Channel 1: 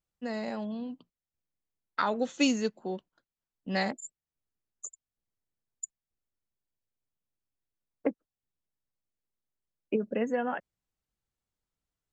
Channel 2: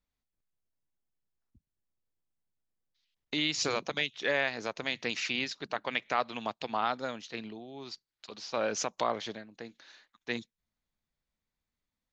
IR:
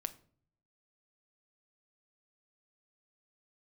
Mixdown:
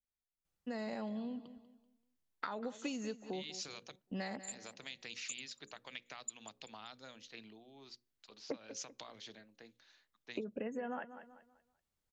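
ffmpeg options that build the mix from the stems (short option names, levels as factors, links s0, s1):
-filter_complex "[0:a]acompressor=threshold=0.0355:ratio=6,adelay=450,volume=1.06,asplit=2[s0][s1];[s1]volume=0.141[s2];[1:a]bandreject=f=60:t=h:w=6,bandreject=f=120:t=h:w=6,bandreject=f=180:t=h:w=6,bandreject=f=240:t=h:w=6,bandreject=f=300:t=h:w=6,bandreject=f=360:t=h:w=6,bandreject=f=420:t=h:w=6,bandreject=f=480:t=h:w=6,bandreject=f=540:t=h:w=6,acrossover=split=200|3000[s3][s4][s5];[s4]acompressor=threshold=0.0141:ratio=6[s6];[s3][s6][s5]amix=inputs=3:normalize=0,adynamicequalizer=threshold=0.00316:dfrequency=1800:dqfactor=0.7:tfrequency=1800:tqfactor=0.7:attack=5:release=100:ratio=0.375:range=2.5:mode=boostabove:tftype=highshelf,volume=0.188,asplit=3[s7][s8][s9];[s7]atrim=end=3.96,asetpts=PTS-STARTPTS,afade=t=out:st=3.956:d=0.004:c=hsin[s10];[s8]atrim=start=3.96:end=4.48,asetpts=PTS-STARTPTS,volume=0[s11];[s9]atrim=start=4.48,asetpts=PTS-STARTPTS,afade=t=in:d=0.004:c=hsin[s12];[s10][s11][s12]concat=n=3:v=0:a=1,asplit=2[s13][s14];[s14]volume=0.211[s15];[2:a]atrim=start_sample=2205[s16];[s15][s16]afir=irnorm=-1:irlink=0[s17];[s2]aecho=0:1:192|384|576|768:1|0.31|0.0961|0.0298[s18];[s0][s13][s17][s18]amix=inputs=4:normalize=0,acompressor=threshold=0.00891:ratio=2.5"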